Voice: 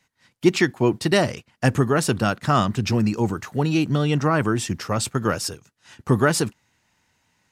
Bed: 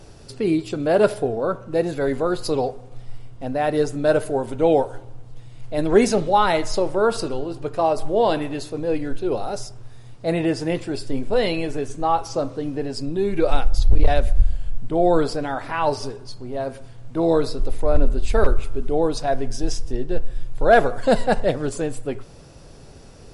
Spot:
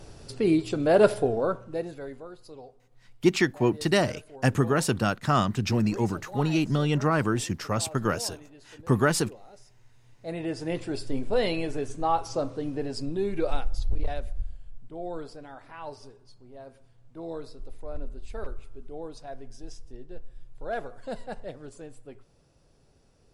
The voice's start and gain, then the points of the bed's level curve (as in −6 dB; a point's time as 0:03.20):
2.80 s, −4.0 dB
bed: 0:01.40 −2 dB
0:02.37 −23.5 dB
0:09.55 −23.5 dB
0:10.86 −5 dB
0:13.07 −5 dB
0:14.67 −18.5 dB